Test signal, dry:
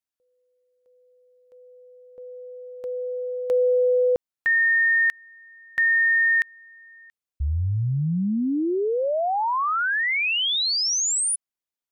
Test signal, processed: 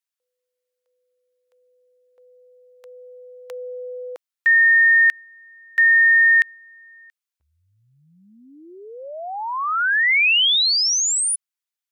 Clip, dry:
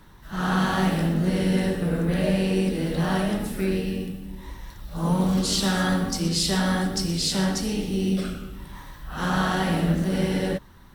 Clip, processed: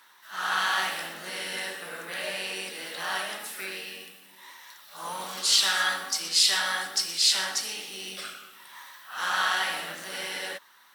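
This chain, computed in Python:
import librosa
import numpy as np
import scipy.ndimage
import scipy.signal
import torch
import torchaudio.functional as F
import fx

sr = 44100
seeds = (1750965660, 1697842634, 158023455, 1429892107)

y = scipy.signal.sosfilt(scipy.signal.butter(2, 1200.0, 'highpass', fs=sr, output='sos'), x)
y = fx.dynamic_eq(y, sr, hz=2500.0, q=0.74, threshold_db=-32.0, ratio=4.0, max_db=5)
y = y * 10.0 ** (2.5 / 20.0)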